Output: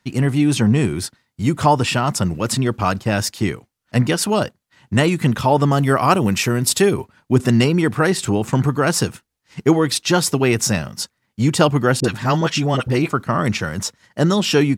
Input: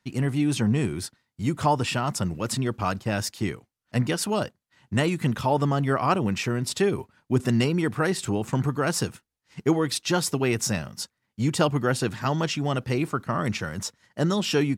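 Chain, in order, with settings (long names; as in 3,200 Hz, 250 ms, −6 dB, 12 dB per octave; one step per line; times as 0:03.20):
0:05.71–0:06.93: parametric band 13,000 Hz +11 dB 1.3 octaves
0:12.00–0:13.10: all-pass dispersion highs, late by 42 ms, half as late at 760 Hz
level +7.5 dB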